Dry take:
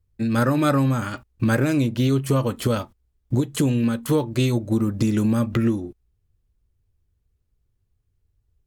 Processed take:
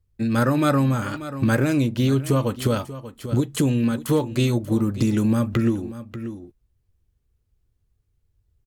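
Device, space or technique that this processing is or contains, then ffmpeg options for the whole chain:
ducked delay: -filter_complex "[0:a]asplit=3[s0][s1][s2];[s1]adelay=587,volume=0.562[s3];[s2]apad=whole_len=407906[s4];[s3][s4]sidechaincompress=threshold=0.0398:ratio=8:attack=25:release=1200[s5];[s0][s5]amix=inputs=2:normalize=0"

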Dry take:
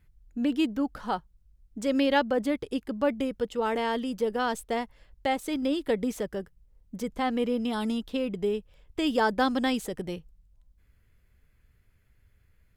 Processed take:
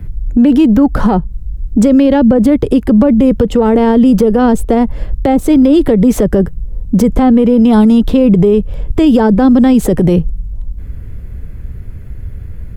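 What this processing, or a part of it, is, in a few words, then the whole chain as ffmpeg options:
mastering chain: -filter_complex "[0:a]equalizer=f=3900:t=o:w=2.2:g=-3,acrossover=split=180|540[s0][s1][s2];[s0]acompressor=threshold=0.00562:ratio=4[s3];[s1]acompressor=threshold=0.0112:ratio=4[s4];[s2]acompressor=threshold=0.0126:ratio=4[s5];[s3][s4][s5]amix=inputs=3:normalize=0,acompressor=threshold=0.0158:ratio=2,asoftclip=type=tanh:threshold=0.0422,tiltshelf=f=700:g=9,alimiter=level_in=35.5:limit=0.891:release=50:level=0:latency=1,volume=0.891"

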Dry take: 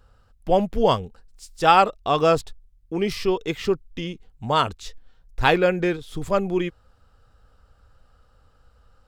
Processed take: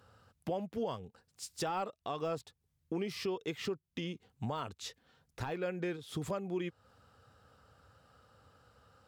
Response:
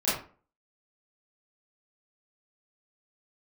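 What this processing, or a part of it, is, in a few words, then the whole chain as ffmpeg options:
podcast mastering chain: -af "highpass=f=91:w=0.5412,highpass=f=91:w=1.3066,deesser=0.7,acompressor=threshold=0.0178:ratio=3,alimiter=level_in=1.26:limit=0.0631:level=0:latency=1:release=377,volume=0.794" -ar 48000 -c:a libmp3lame -b:a 128k

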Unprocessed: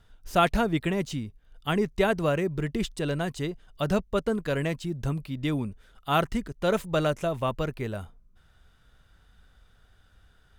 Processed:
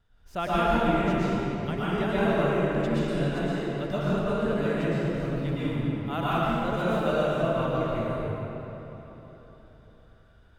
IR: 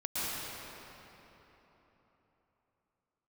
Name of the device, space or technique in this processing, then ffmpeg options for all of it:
swimming-pool hall: -filter_complex "[1:a]atrim=start_sample=2205[s0];[0:a][s0]afir=irnorm=-1:irlink=0,highshelf=f=5400:g=-8,volume=0.501"

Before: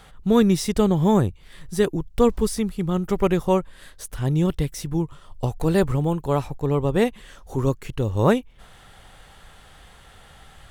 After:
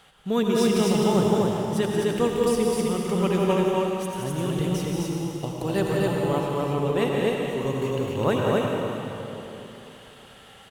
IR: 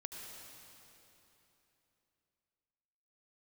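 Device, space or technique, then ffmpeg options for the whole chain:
stadium PA: -filter_complex "[0:a]highpass=f=220:p=1,equalizer=f=2900:t=o:w=0.31:g=7,aecho=1:1:177.8|256.6:0.447|0.794[s0];[1:a]atrim=start_sample=2205[s1];[s0][s1]afir=irnorm=-1:irlink=0"

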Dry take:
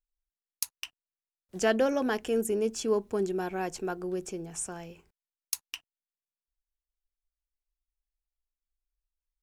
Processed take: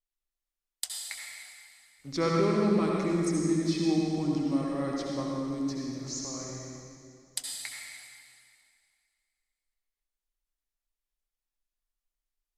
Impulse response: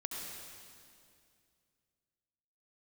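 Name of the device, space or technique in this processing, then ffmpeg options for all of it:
slowed and reverbed: -filter_complex "[0:a]asetrate=33075,aresample=44100[s0];[1:a]atrim=start_sample=2205[s1];[s0][s1]afir=irnorm=-1:irlink=0"

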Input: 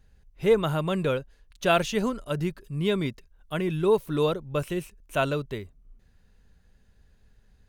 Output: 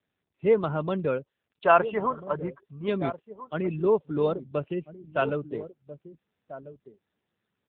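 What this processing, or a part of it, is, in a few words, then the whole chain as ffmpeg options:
mobile call with aggressive noise cancelling: -filter_complex "[0:a]asettb=1/sr,asplit=3[s0][s1][s2];[s0]atrim=end=1.644[s3];[s1]atrim=start=1.64:end=2.88,asetpts=PTS-STARTPTS,afade=t=in:d=0.004:c=qsin,afade=t=out:st=1.236:d=0.004:c=qsin,equalizer=f=125:t=o:w=1:g=-4,equalizer=f=250:t=o:w=1:g=-6,equalizer=f=1000:t=o:w=1:g=11,equalizer=f=4000:t=o:w=1:g=-11,equalizer=f=8000:t=o:w=1:g=7[s4];[s2]atrim=start=2.876[s5];[s3][s4]acrossfade=d=0.004:c1=hsin:c2=qsin[s6];[s6][s5]acrossfade=d=0.004:c1=qsin:c2=hsin,highpass=160,asplit=2[s7][s8];[s8]adelay=1341,volume=0.251,highshelf=f=4000:g=-30.2[s9];[s7][s9]amix=inputs=2:normalize=0,afftdn=nr=16:nf=-36" -ar 8000 -c:a libopencore_amrnb -b:a 7950

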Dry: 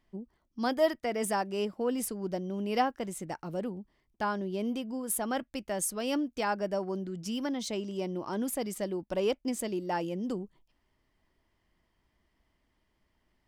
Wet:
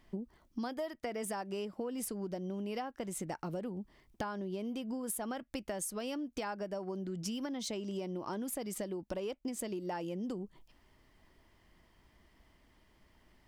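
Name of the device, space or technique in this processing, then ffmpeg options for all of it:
serial compression, leveller first: -af "acompressor=threshold=0.02:ratio=2,acompressor=threshold=0.00562:ratio=6,volume=2.66"

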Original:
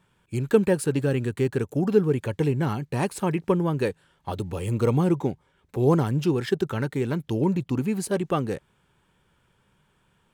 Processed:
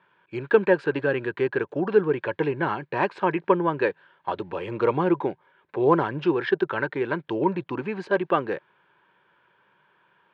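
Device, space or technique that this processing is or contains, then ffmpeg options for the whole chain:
kitchen radio: -af "highpass=230,equalizer=f=240:t=q:w=4:g=-8,equalizer=f=350:t=q:w=4:g=4,equalizer=f=580:t=q:w=4:g=4,equalizer=f=990:t=q:w=4:g=9,equalizer=f=1600:t=q:w=4:g=10,equalizer=f=2400:t=q:w=4:g=3,lowpass=f=3700:w=0.5412,lowpass=f=3700:w=1.3066"

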